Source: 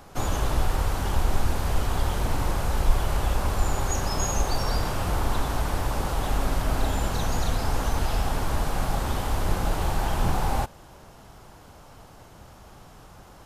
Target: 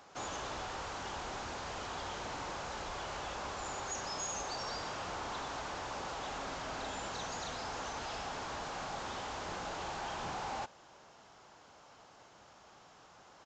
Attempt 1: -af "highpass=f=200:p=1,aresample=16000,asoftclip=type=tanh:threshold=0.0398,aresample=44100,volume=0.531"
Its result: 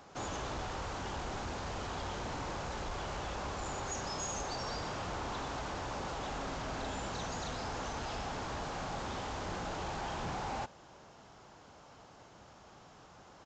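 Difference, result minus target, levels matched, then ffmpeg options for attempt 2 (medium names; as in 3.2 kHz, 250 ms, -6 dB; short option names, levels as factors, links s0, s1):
250 Hz band +4.0 dB
-af "highpass=f=610:p=1,aresample=16000,asoftclip=type=tanh:threshold=0.0398,aresample=44100,volume=0.531"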